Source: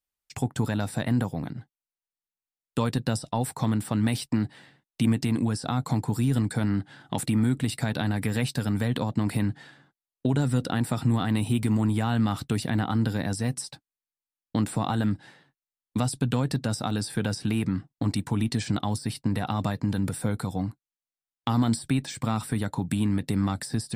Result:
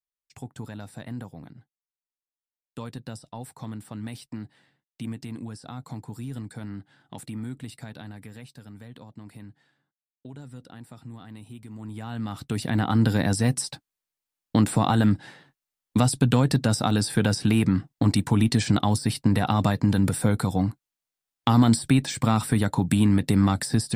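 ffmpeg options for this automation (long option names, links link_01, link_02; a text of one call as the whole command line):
ffmpeg -i in.wav -af "volume=12.5dB,afade=type=out:start_time=7.62:duration=0.86:silence=0.446684,afade=type=in:start_time=11.72:duration=0.63:silence=0.251189,afade=type=in:start_time=12.35:duration=0.78:silence=0.266073" out.wav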